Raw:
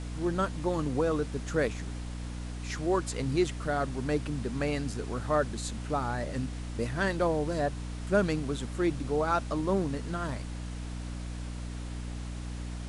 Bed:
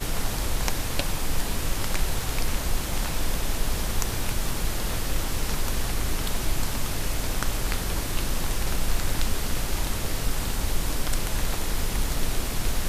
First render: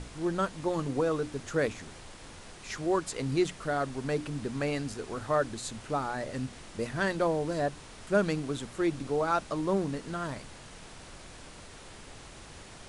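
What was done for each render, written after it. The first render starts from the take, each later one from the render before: hum notches 60/120/180/240/300 Hz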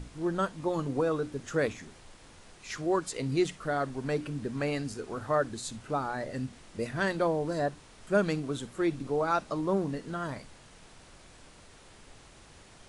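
noise print and reduce 6 dB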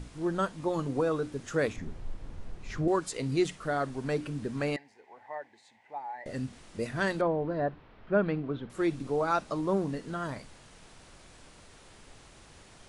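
1.76–2.88 s: tilt EQ -3.5 dB/octave; 4.76–6.26 s: two resonant band-passes 1.3 kHz, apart 1.2 oct; 7.21–8.70 s: Gaussian low-pass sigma 3 samples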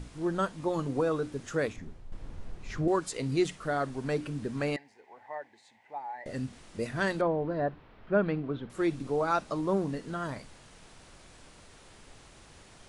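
1.44–2.12 s: fade out, to -10 dB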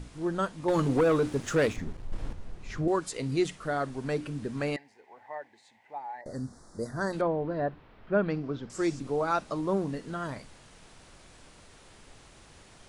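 0.68–2.33 s: waveshaping leveller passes 2; 6.21–7.13 s: Chebyshev band-stop 1.4–5.1 kHz; 8.30–9.00 s: high-order bell 6.2 kHz +13 dB 1 oct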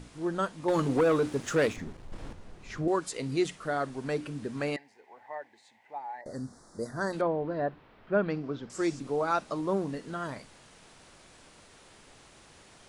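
bass shelf 100 Hz -9.5 dB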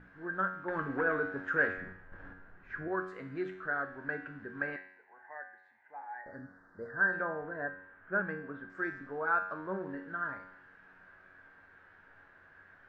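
resonant low-pass 1.6 kHz, resonance Q 11; feedback comb 93 Hz, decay 0.7 s, harmonics all, mix 80%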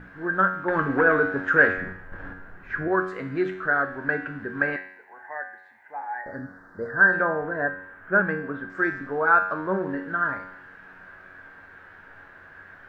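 trim +11.5 dB

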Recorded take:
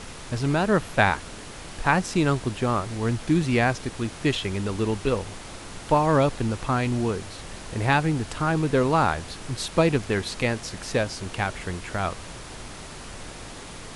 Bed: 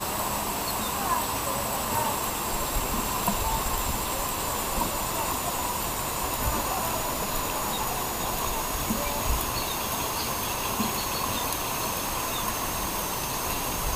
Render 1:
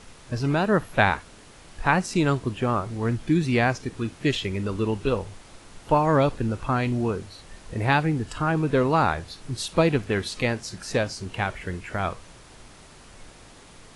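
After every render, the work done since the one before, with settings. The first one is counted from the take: noise print and reduce 9 dB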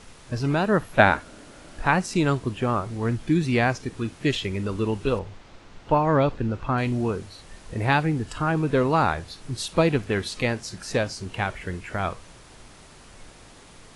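0.99–1.85 s: small resonant body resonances 280/590/1400 Hz, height 8 dB, ringing for 20 ms; 5.19–6.78 s: distance through air 110 m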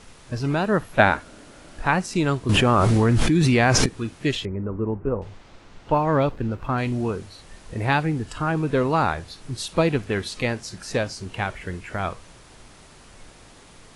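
2.49–3.86 s: level flattener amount 100%; 4.45–5.22 s: Gaussian low-pass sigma 6.1 samples; 5.95–6.79 s: hysteresis with a dead band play -47.5 dBFS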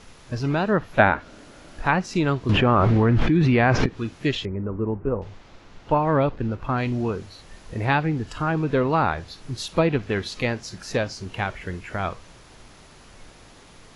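low-pass that closes with the level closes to 2.6 kHz, closed at -14 dBFS; peaking EQ 8.5 kHz -10.5 dB 0.2 oct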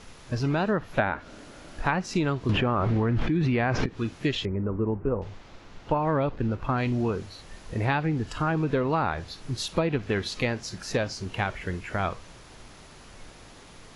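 compression 6:1, threshold -21 dBFS, peak gain reduction 10.5 dB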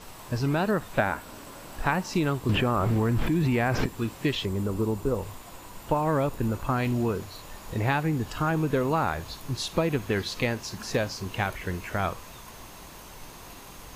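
add bed -18.5 dB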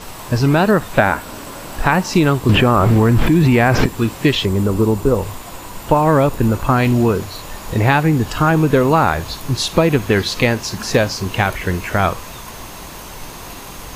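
trim +12 dB; peak limiter -1 dBFS, peak gain reduction 3 dB

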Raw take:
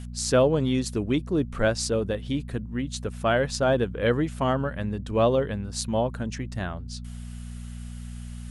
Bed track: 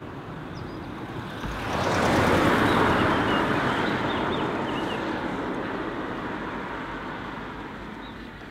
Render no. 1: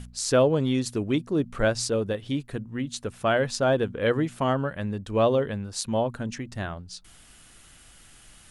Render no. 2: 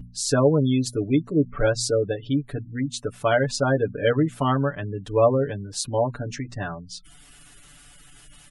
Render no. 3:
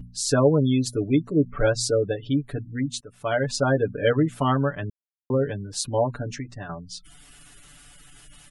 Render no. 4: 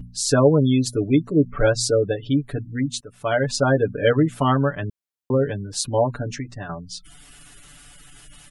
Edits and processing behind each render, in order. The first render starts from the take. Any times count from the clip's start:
de-hum 60 Hz, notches 4
spectral gate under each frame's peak -25 dB strong; comb 6.9 ms, depth 92%
3.01–3.56 s: fade in, from -21 dB; 4.90–5.30 s: mute; 6.26–6.69 s: fade out, to -8.5 dB
trim +3 dB

